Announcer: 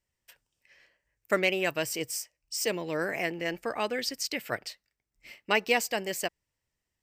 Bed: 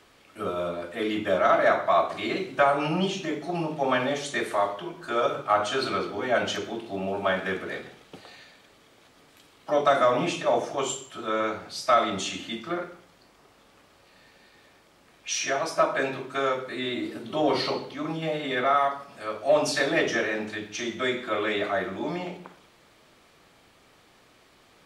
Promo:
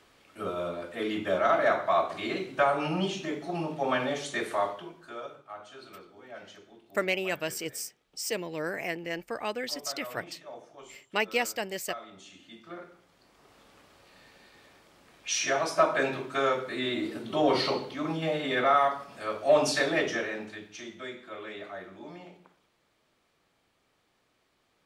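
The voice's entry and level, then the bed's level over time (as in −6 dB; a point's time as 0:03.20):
5.65 s, −2.5 dB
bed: 0:04.69 −3.5 dB
0:05.45 −21 dB
0:12.17 −21 dB
0:13.56 −0.5 dB
0:19.67 −0.5 dB
0:21.16 −14 dB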